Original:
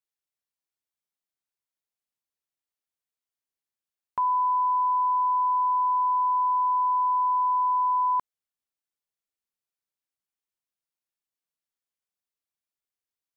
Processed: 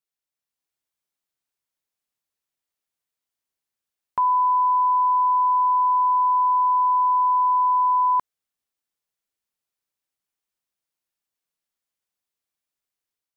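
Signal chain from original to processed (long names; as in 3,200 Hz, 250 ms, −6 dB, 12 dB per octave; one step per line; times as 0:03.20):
automatic gain control gain up to 4.5 dB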